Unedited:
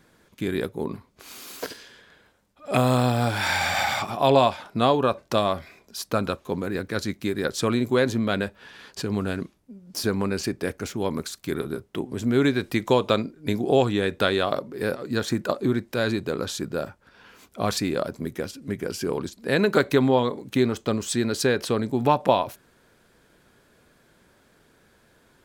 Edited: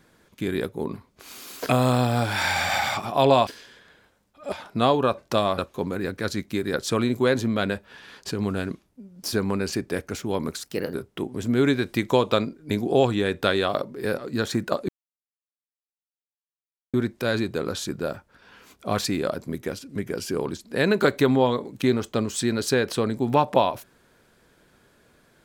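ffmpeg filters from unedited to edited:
-filter_complex "[0:a]asplit=8[a][b][c][d][e][f][g][h];[a]atrim=end=1.692[i];[b]atrim=start=2.738:end=4.522[j];[c]atrim=start=1.688:end=2.742[k];[d]atrim=start=4.518:end=5.582[l];[e]atrim=start=6.288:end=11.344[m];[f]atrim=start=11.34:end=11.71,asetpts=PTS-STARTPTS,asetrate=53361,aresample=44100,atrim=end_sample=13485,asetpts=PTS-STARTPTS[n];[g]atrim=start=11.706:end=15.66,asetpts=PTS-STARTPTS,afade=t=out:st=3.95:d=0.004:c=hsin,apad=pad_dur=2.05[o];[h]atrim=start=15.66,asetpts=PTS-STARTPTS,afade=t=in:d=0.004:c=hsin[p];[i][j]acrossfade=d=0.004:c1=hsin:c2=hsin[q];[q][k]acrossfade=d=0.004:c1=hsin:c2=hsin[r];[r][l]acrossfade=d=0.004:c1=hsin:c2=hsin[s];[s][m]acrossfade=d=0.004:c1=hsin:c2=hsin[t];[t][n]acrossfade=d=0.004:c1=hsin:c2=hsin[u];[o][p]concat=n=2:v=0:a=1[v];[u][v]acrossfade=d=0.004:c1=hsin:c2=hsin"

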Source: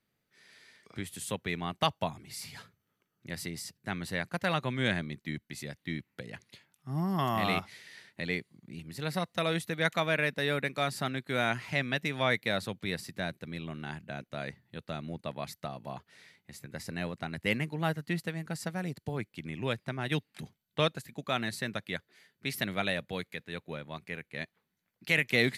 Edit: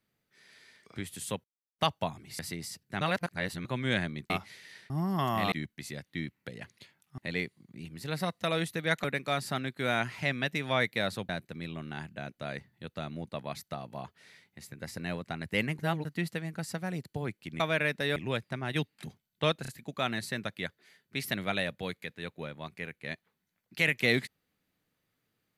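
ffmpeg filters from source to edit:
-filter_complex "[0:a]asplit=18[a][b][c][d][e][f][g][h][i][j][k][l][m][n][o][p][q][r];[a]atrim=end=1.44,asetpts=PTS-STARTPTS,afade=t=out:st=1.436:d=0.004:c=hsin[s];[b]atrim=start=1.44:end=1.79,asetpts=PTS-STARTPTS,volume=0[t];[c]atrim=start=1.79:end=2.392,asetpts=PTS-STARTPTS,afade=t=in:d=0.004:c=hsin[u];[d]atrim=start=3.328:end=3.952[v];[e]atrim=start=3.948:end=4.592,asetpts=PTS-STARTPTS,areverse[w];[f]atrim=start=4.588:end=5.242[x];[g]atrim=start=7.518:end=8.122[y];[h]atrim=start=6.898:end=7.522[z];[i]atrim=start=5.238:end=6.902[aa];[j]atrim=start=8.118:end=9.982[ab];[k]atrim=start=10.538:end=12.792[ac];[l]atrim=start=13.208:end=17.712[ad];[m]atrim=start=17.708:end=17.972,asetpts=PTS-STARTPTS,areverse[ae];[n]atrim=start=17.968:end=19.522[af];[o]atrim=start=9.978:end=10.542[ag];[p]atrim=start=19.518:end=21.012[ah];[q]atrim=start=20.978:end=21.012[ai];[r]atrim=start=20.978[aj];[s][t][u]concat=n=3:v=0:a=1[ak];[ak][v]acrossfade=d=0.004:c1=hsin:c2=hsin[al];[al][w]acrossfade=d=0.004:c1=hsin:c2=hsin[am];[am][x]acrossfade=d=0.004:c1=hsin:c2=hsin[an];[an][y]acrossfade=d=0.004:c1=hsin:c2=hsin[ao];[ao][z]acrossfade=d=0.004:c1=hsin:c2=hsin[ap];[ap][aa]acrossfade=d=0.004:c1=hsin:c2=hsin[aq];[aq][ab]acrossfade=d=0.004:c1=hsin:c2=hsin[ar];[ar][ac]acrossfade=d=0.004:c1=hsin:c2=hsin[as];[as][ad]acrossfade=d=0.004:c1=hsin:c2=hsin[at];[at][ae]acrossfade=d=0.004:c1=hsin:c2=hsin[au];[au][af]acrossfade=d=0.004:c1=hsin:c2=hsin[av];[av][ag]acrossfade=d=0.004:c1=hsin:c2=hsin[aw];[aw][ah]acrossfade=d=0.004:c1=hsin:c2=hsin[ax];[ax][ai]acrossfade=d=0.004:c1=hsin:c2=hsin[ay];[ay][aj]acrossfade=d=0.004:c1=hsin:c2=hsin"

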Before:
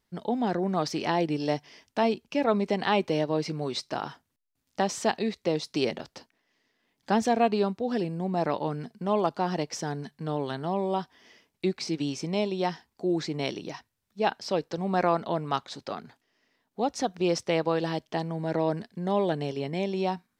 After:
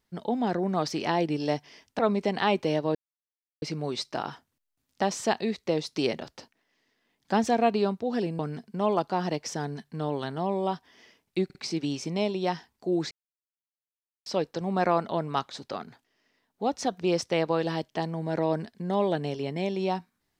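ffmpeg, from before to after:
-filter_complex "[0:a]asplit=8[a][b][c][d][e][f][g][h];[a]atrim=end=1.992[i];[b]atrim=start=2.438:end=3.4,asetpts=PTS-STARTPTS,afade=t=out:st=0.958:d=0.004:c=hsin,apad=pad_dur=0.67[j];[c]atrim=start=3.4:end=8.172,asetpts=PTS-STARTPTS,afade=t=in:d=0.004:c=hsin[k];[d]atrim=start=8.658:end=11.772[l];[e]atrim=start=11.718:end=11.772[m];[f]atrim=start=11.718:end=13.28,asetpts=PTS-STARTPTS,afade=t=out:st=1.558:d=0.004:c=hsin[n];[g]atrim=start=13.28:end=14.43,asetpts=PTS-STARTPTS,volume=0[o];[h]atrim=start=14.43,asetpts=PTS-STARTPTS,afade=t=in:d=0.004:c=hsin[p];[j][k]concat=n=2:v=0:a=1[q];[i][q]acrossfade=d=0.004:c1=hsin:c2=hsin[r];[r][l]acrossfade=d=0.004:c1=hsin:c2=hsin[s];[s][m]acrossfade=d=0.004:c1=hsin:c2=hsin[t];[n][o][p]concat=n=3:v=0:a=1[u];[t][u]acrossfade=d=0.004:c1=hsin:c2=hsin"

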